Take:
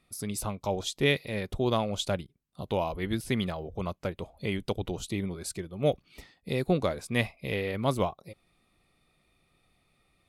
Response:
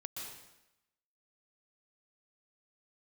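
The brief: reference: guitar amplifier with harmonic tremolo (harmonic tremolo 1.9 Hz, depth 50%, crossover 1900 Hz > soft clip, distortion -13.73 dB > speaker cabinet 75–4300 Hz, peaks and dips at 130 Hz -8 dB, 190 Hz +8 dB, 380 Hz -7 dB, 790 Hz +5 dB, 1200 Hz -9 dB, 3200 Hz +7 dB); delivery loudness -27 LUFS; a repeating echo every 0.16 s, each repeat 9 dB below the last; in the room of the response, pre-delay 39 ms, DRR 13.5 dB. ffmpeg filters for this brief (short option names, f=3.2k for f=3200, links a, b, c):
-filter_complex "[0:a]aecho=1:1:160|320|480|640:0.355|0.124|0.0435|0.0152,asplit=2[a][b];[1:a]atrim=start_sample=2205,adelay=39[c];[b][c]afir=irnorm=-1:irlink=0,volume=-12dB[d];[a][d]amix=inputs=2:normalize=0,acrossover=split=1900[e][f];[e]aeval=exprs='val(0)*(1-0.5/2+0.5/2*cos(2*PI*1.9*n/s))':c=same[g];[f]aeval=exprs='val(0)*(1-0.5/2-0.5/2*cos(2*PI*1.9*n/s))':c=same[h];[g][h]amix=inputs=2:normalize=0,asoftclip=threshold=-22.5dB,highpass=75,equalizer=f=130:t=q:w=4:g=-8,equalizer=f=190:t=q:w=4:g=8,equalizer=f=380:t=q:w=4:g=-7,equalizer=f=790:t=q:w=4:g=5,equalizer=f=1.2k:t=q:w=4:g=-9,equalizer=f=3.2k:t=q:w=4:g=7,lowpass=f=4.3k:w=0.5412,lowpass=f=4.3k:w=1.3066,volume=7dB"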